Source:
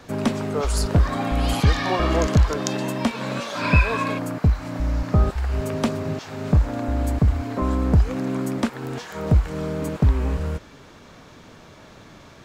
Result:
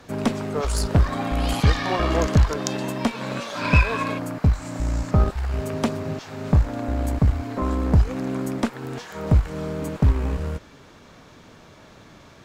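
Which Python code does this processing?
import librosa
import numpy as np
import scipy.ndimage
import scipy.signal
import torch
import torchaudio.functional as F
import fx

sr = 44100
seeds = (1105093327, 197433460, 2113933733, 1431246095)

y = fx.peak_eq(x, sr, hz=7600.0, db=14.0, octaves=0.56, at=(4.53, 5.11))
y = fx.cheby_harmonics(y, sr, harmonics=(6, 7), levels_db=(-25, -31), full_scale_db=-3.5)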